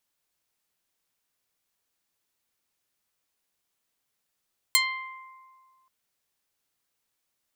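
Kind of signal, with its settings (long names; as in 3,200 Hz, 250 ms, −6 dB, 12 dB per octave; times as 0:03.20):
Karplus-Strong string C6, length 1.13 s, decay 1.94 s, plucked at 0.2, medium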